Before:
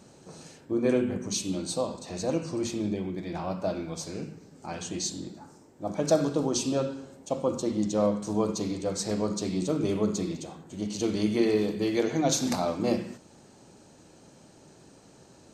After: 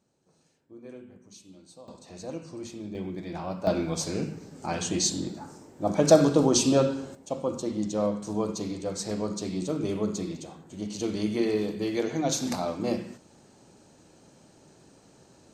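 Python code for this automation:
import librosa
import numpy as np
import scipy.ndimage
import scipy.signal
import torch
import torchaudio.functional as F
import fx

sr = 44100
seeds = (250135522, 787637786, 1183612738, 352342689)

y = fx.gain(x, sr, db=fx.steps((0.0, -20.0), (1.88, -8.5), (2.95, -1.5), (3.67, 6.0), (7.15, -2.0)))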